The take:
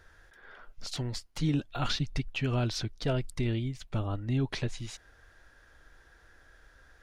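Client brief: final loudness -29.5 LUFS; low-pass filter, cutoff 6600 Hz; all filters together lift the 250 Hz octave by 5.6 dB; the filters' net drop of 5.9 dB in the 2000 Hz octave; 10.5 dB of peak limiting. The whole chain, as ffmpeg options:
-af "lowpass=6.6k,equalizer=f=250:t=o:g=7,equalizer=f=2k:t=o:g=-8.5,volume=6.5dB,alimiter=limit=-19.5dB:level=0:latency=1"

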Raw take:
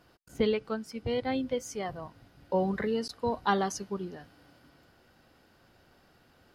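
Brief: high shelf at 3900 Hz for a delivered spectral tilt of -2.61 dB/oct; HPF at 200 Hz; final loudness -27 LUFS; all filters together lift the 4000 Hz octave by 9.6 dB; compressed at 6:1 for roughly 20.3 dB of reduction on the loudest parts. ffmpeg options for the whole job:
-af "highpass=200,highshelf=f=3.9k:g=9,equalizer=f=4k:t=o:g=7,acompressor=threshold=-44dB:ratio=6,volume=21.5dB"

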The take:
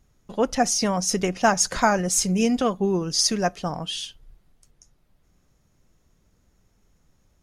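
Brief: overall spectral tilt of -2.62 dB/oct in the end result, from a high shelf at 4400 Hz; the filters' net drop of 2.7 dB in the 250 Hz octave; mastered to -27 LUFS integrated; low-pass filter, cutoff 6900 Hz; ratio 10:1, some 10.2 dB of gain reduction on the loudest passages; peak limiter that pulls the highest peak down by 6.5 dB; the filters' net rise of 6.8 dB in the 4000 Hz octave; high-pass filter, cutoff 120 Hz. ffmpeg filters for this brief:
-af "highpass=120,lowpass=6.9k,equalizer=f=250:t=o:g=-3,equalizer=f=4k:t=o:g=4,highshelf=f=4.4k:g=9,acompressor=threshold=-21dB:ratio=10,volume=-0.5dB,alimiter=limit=-16.5dB:level=0:latency=1"

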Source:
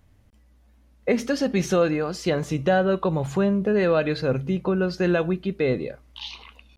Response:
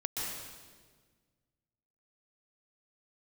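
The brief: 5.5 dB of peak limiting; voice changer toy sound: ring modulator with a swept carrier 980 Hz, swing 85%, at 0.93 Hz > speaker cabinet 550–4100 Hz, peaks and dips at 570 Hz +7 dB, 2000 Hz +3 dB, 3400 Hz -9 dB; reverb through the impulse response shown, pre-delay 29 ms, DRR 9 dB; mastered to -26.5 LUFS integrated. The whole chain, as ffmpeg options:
-filter_complex "[0:a]alimiter=limit=-15.5dB:level=0:latency=1,asplit=2[a][b];[1:a]atrim=start_sample=2205,adelay=29[c];[b][c]afir=irnorm=-1:irlink=0,volume=-13dB[d];[a][d]amix=inputs=2:normalize=0,aeval=exprs='val(0)*sin(2*PI*980*n/s+980*0.85/0.93*sin(2*PI*0.93*n/s))':c=same,highpass=550,equalizer=f=570:t=q:w=4:g=7,equalizer=f=2k:t=q:w=4:g=3,equalizer=f=3.4k:t=q:w=4:g=-9,lowpass=f=4.1k:w=0.5412,lowpass=f=4.1k:w=1.3066"

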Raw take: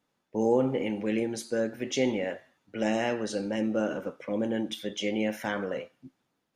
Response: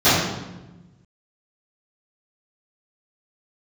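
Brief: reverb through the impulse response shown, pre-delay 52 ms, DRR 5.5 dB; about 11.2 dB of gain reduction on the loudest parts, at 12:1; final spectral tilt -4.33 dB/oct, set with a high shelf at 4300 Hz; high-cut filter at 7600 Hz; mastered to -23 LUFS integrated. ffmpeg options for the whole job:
-filter_complex "[0:a]lowpass=7.6k,highshelf=f=4.3k:g=8,acompressor=threshold=-30dB:ratio=12,asplit=2[a][b];[1:a]atrim=start_sample=2205,adelay=52[c];[b][c]afir=irnorm=-1:irlink=0,volume=-30.5dB[d];[a][d]amix=inputs=2:normalize=0,volume=11.5dB"

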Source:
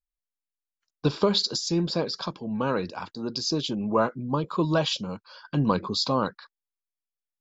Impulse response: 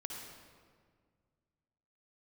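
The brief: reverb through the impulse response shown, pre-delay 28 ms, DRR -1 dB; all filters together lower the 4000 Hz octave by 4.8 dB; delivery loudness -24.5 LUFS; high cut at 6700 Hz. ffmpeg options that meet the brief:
-filter_complex "[0:a]lowpass=6.7k,equalizer=f=4k:t=o:g=-5,asplit=2[a][b];[1:a]atrim=start_sample=2205,adelay=28[c];[b][c]afir=irnorm=-1:irlink=0,volume=2dB[d];[a][d]amix=inputs=2:normalize=0,volume=-0.5dB"

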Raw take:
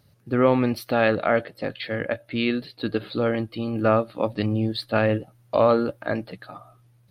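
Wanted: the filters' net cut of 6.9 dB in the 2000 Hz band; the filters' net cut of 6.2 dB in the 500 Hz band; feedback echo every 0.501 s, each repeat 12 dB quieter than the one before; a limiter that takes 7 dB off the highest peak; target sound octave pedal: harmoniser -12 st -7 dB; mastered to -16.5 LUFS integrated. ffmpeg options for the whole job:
-filter_complex "[0:a]equalizer=f=500:t=o:g=-7,equalizer=f=2k:t=o:g=-9,alimiter=limit=-17.5dB:level=0:latency=1,aecho=1:1:501|1002|1503:0.251|0.0628|0.0157,asplit=2[a][b];[b]asetrate=22050,aresample=44100,atempo=2,volume=-7dB[c];[a][c]amix=inputs=2:normalize=0,volume=12.5dB"

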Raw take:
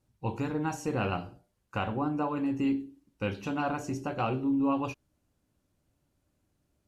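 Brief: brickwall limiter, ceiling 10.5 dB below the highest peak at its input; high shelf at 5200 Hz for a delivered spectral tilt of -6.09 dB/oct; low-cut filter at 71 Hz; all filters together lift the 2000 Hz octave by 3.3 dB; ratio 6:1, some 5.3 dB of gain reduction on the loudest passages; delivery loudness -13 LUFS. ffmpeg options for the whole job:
-af "highpass=71,equalizer=f=2k:t=o:g=6,highshelf=f=5.2k:g=-5,acompressor=threshold=-30dB:ratio=6,volume=25.5dB,alimiter=limit=-3.5dB:level=0:latency=1"

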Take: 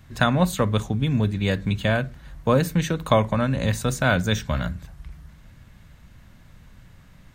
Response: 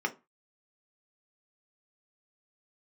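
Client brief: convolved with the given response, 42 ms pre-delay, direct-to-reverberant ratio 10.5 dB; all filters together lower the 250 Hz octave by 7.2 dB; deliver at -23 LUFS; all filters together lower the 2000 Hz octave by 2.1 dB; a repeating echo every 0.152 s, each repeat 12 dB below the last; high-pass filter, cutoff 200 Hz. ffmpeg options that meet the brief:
-filter_complex "[0:a]highpass=200,equalizer=f=250:t=o:g=-6,equalizer=f=2k:t=o:g=-3,aecho=1:1:152|304|456:0.251|0.0628|0.0157,asplit=2[a][b];[1:a]atrim=start_sample=2205,adelay=42[c];[b][c]afir=irnorm=-1:irlink=0,volume=-18dB[d];[a][d]amix=inputs=2:normalize=0,volume=3.5dB"

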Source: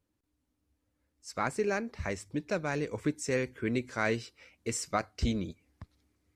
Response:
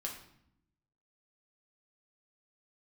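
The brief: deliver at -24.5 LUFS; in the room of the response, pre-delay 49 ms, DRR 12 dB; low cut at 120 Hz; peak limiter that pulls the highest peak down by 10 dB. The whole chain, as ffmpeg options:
-filter_complex "[0:a]highpass=120,alimiter=limit=-24dB:level=0:latency=1,asplit=2[a][b];[1:a]atrim=start_sample=2205,adelay=49[c];[b][c]afir=irnorm=-1:irlink=0,volume=-12dB[d];[a][d]amix=inputs=2:normalize=0,volume=12.5dB"

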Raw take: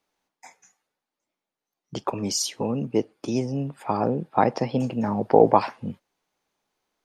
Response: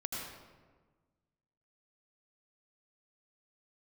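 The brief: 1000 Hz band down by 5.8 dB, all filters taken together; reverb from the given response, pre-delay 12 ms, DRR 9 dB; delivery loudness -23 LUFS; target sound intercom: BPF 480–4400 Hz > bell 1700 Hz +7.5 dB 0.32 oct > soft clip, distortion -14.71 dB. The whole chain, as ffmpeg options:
-filter_complex "[0:a]equalizer=f=1k:t=o:g=-7.5,asplit=2[a][b];[1:a]atrim=start_sample=2205,adelay=12[c];[b][c]afir=irnorm=-1:irlink=0,volume=-11dB[d];[a][d]amix=inputs=2:normalize=0,highpass=480,lowpass=4.4k,equalizer=f=1.7k:t=o:w=0.32:g=7.5,asoftclip=threshold=-13.5dB,volume=8dB"

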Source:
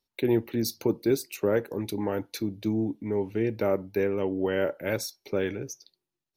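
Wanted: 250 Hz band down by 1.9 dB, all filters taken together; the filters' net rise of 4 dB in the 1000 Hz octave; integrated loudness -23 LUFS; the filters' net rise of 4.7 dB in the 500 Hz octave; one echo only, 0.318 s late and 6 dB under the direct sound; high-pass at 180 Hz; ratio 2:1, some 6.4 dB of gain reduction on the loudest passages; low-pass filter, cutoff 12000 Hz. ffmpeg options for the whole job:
-af "highpass=180,lowpass=12k,equalizer=f=250:t=o:g=-6.5,equalizer=f=500:t=o:g=7.5,equalizer=f=1k:t=o:g=3,acompressor=threshold=-28dB:ratio=2,aecho=1:1:318:0.501,volume=7dB"

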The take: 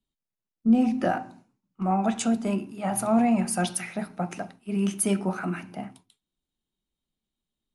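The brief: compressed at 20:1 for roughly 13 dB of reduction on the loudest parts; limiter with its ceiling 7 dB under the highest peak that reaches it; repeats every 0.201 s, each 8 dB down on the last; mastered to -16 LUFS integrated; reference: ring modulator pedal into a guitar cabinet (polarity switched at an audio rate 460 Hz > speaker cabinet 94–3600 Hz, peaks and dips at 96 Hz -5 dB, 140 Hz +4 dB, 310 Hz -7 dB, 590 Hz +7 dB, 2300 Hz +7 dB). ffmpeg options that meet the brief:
-af "acompressor=threshold=-27dB:ratio=20,alimiter=limit=-24dB:level=0:latency=1,aecho=1:1:201|402|603|804|1005:0.398|0.159|0.0637|0.0255|0.0102,aeval=exprs='val(0)*sgn(sin(2*PI*460*n/s))':c=same,highpass=94,equalizer=f=96:t=q:w=4:g=-5,equalizer=f=140:t=q:w=4:g=4,equalizer=f=310:t=q:w=4:g=-7,equalizer=f=590:t=q:w=4:g=7,equalizer=f=2.3k:t=q:w=4:g=7,lowpass=f=3.6k:w=0.5412,lowpass=f=3.6k:w=1.3066,volume=16.5dB"

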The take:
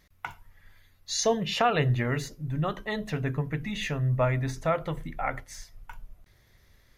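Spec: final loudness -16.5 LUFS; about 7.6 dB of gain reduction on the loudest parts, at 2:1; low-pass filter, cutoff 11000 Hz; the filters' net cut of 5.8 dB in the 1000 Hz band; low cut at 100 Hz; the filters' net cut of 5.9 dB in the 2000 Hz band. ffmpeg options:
-af "highpass=100,lowpass=11k,equalizer=f=1k:t=o:g=-8,equalizer=f=2k:t=o:g=-5,acompressor=threshold=-37dB:ratio=2,volume=20.5dB"

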